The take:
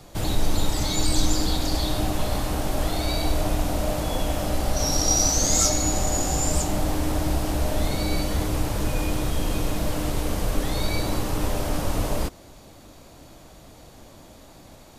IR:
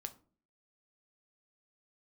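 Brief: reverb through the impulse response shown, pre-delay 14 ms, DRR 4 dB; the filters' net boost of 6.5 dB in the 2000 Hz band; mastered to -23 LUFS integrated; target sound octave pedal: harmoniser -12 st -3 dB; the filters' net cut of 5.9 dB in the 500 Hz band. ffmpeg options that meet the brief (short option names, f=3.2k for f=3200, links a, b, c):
-filter_complex "[0:a]equalizer=f=500:t=o:g=-8.5,equalizer=f=2k:t=o:g=8.5,asplit=2[a][b];[1:a]atrim=start_sample=2205,adelay=14[c];[b][c]afir=irnorm=-1:irlink=0,volume=-0.5dB[d];[a][d]amix=inputs=2:normalize=0,asplit=2[e][f];[f]asetrate=22050,aresample=44100,atempo=2,volume=-3dB[g];[e][g]amix=inputs=2:normalize=0,volume=-1dB"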